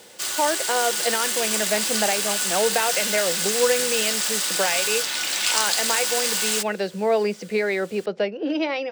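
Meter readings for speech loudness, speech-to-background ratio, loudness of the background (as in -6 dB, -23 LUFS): -25.5 LUFS, -4.0 dB, -21.5 LUFS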